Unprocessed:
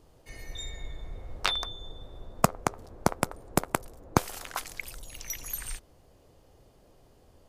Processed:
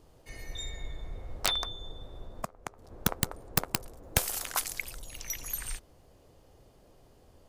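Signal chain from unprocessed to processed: 2.26–2.92 s: compression 5:1, threshold -36 dBFS, peak gain reduction 19 dB; 4.04–4.83 s: treble shelf 5.2 kHz +11 dB; integer overflow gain 11.5 dB

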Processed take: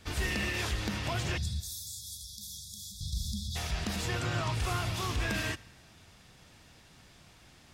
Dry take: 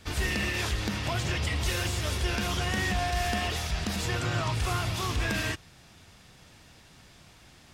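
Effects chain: 1.60–3.01 s: pre-emphasis filter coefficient 0.9; 1.38–3.56 s: spectral selection erased 230–3300 Hz; on a send: reverberation RT60 1.3 s, pre-delay 41 ms, DRR 21.5 dB; on the sum: trim -3 dB

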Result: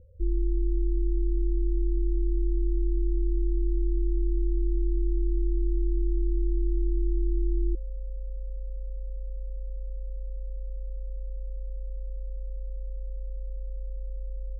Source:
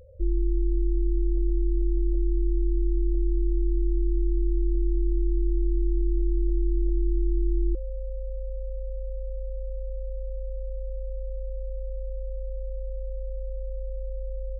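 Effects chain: inverse Chebyshev low-pass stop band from 830 Hz, stop band 40 dB; trim -1.5 dB

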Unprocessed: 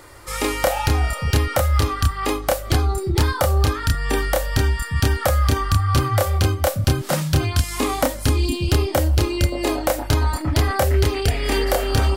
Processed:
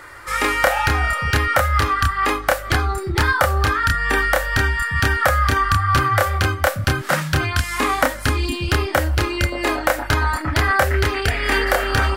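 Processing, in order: peaking EQ 1.6 kHz +14 dB 1.4 oct; trim -2.5 dB

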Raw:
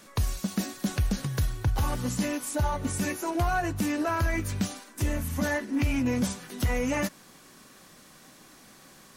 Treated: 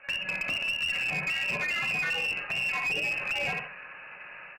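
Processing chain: level-controlled noise filter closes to 1.9 kHz, open at -23 dBFS; level rider gain up to 8 dB; feedback delay 123 ms, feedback 32%, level -10 dB; frequency inversion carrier 2.8 kHz; dynamic bell 1.4 kHz, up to -7 dB, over -32 dBFS, Q 0.8; compression 20:1, threshold -24 dBFS, peak gain reduction 11.5 dB; tempo 2×; fifteen-band graphic EQ 160 Hz +9 dB, 630 Hz +10 dB, 1.6 kHz +8 dB; reverberation, pre-delay 3 ms, DRR 3.5 dB; Chebyshev shaper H 2 -24 dB, 3 -24 dB, 4 -29 dB, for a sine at -12 dBFS; peak limiter -19 dBFS, peak gain reduction 8 dB; one-sided clip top -26 dBFS, bottom -22 dBFS; trim -1 dB

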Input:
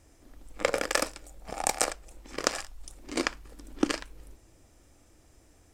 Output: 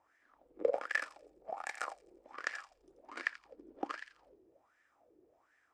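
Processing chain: dynamic bell 1.4 kHz, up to -6 dB, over -45 dBFS, Q 0.87; on a send: feedback echo behind a high-pass 85 ms, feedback 47%, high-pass 2.5 kHz, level -9 dB; on the sum: wah-wah 1.3 Hz 370–1800 Hz, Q 6.4; trim +6 dB

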